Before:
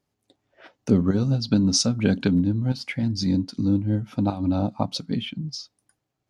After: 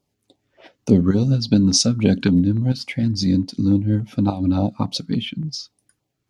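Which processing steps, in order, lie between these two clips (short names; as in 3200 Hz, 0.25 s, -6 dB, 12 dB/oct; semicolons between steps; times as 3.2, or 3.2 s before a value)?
LFO notch saw down 3.5 Hz 560–1900 Hz; gain +4.5 dB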